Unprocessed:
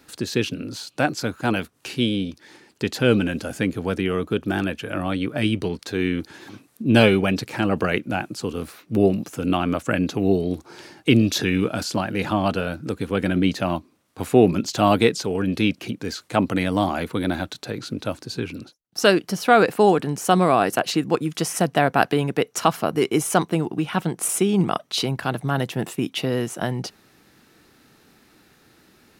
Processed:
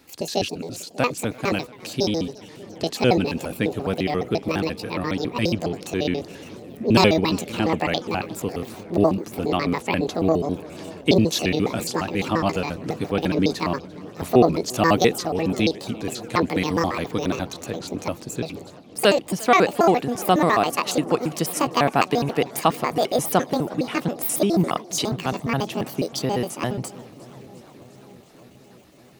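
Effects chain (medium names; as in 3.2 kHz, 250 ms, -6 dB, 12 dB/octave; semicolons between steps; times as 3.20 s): pitch shift switched off and on +8.5 st, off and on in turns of 69 ms; peaking EQ 1.5 kHz -6 dB 0.29 oct; on a send: feedback echo behind a low-pass 591 ms, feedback 68%, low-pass 830 Hz, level -19.5 dB; on the sum: modulated delay 348 ms, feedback 73%, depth 160 cents, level -23 dB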